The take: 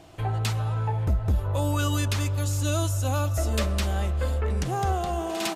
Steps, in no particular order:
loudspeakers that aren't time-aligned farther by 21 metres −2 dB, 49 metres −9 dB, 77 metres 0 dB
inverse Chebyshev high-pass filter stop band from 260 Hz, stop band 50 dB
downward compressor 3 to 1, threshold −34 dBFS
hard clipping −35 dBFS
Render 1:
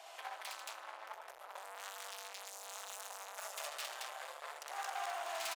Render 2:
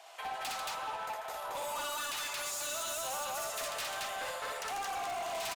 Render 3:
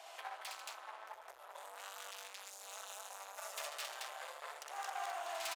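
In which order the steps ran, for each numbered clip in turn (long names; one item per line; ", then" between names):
downward compressor, then loudspeakers that aren't time-aligned, then hard clipping, then inverse Chebyshev high-pass filter
inverse Chebyshev high-pass filter, then downward compressor, then loudspeakers that aren't time-aligned, then hard clipping
loudspeakers that aren't time-aligned, then downward compressor, then hard clipping, then inverse Chebyshev high-pass filter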